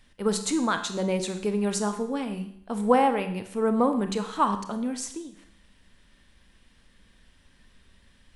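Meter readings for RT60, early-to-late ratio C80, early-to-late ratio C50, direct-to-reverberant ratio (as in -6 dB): 0.65 s, 13.0 dB, 10.0 dB, 7.5 dB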